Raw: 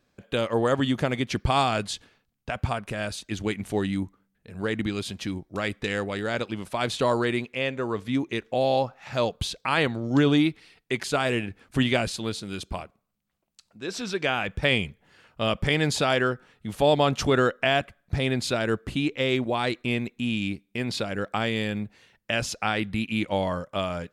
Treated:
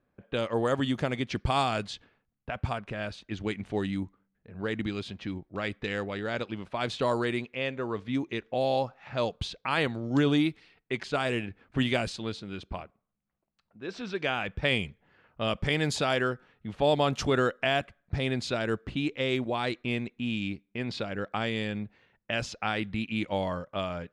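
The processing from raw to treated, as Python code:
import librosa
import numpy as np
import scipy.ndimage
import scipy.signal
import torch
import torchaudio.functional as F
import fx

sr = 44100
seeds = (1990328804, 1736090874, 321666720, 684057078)

y = fx.env_lowpass(x, sr, base_hz=1700.0, full_db=-18.5)
y = y * 10.0 ** (-4.0 / 20.0)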